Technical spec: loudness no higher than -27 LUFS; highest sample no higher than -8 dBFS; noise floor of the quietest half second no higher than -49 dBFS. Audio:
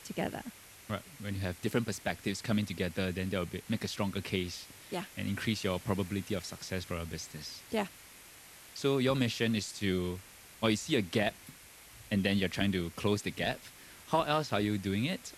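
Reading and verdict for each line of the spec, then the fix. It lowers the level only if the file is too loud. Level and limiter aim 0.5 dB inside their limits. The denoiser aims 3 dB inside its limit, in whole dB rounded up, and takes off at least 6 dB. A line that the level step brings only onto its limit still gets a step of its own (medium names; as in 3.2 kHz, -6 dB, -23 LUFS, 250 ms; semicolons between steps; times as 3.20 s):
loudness -34.0 LUFS: pass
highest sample -11.5 dBFS: pass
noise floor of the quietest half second -54 dBFS: pass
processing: none needed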